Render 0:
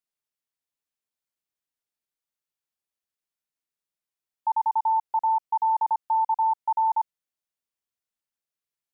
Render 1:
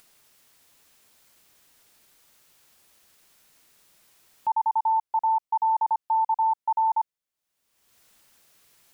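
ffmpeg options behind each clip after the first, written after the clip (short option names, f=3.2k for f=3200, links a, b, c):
-af "acompressor=mode=upward:threshold=-36dB:ratio=2.5"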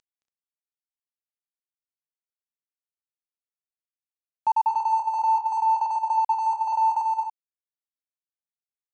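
-af "aresample=16000,aeval=exprs='sgn(val(0))*max(abs(val(0))-0.00355,0)':c=same,aresample=44100,aecho=1:1:220|251|283:0.501|0.178|0.316,volume=3dB"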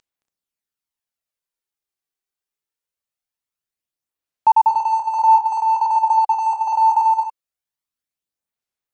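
-af "aphaser=in_gain=1:out_gain=1:delay=2.6:decay=0.34:speed=0.23:type=sinusoidal,volume=6dB"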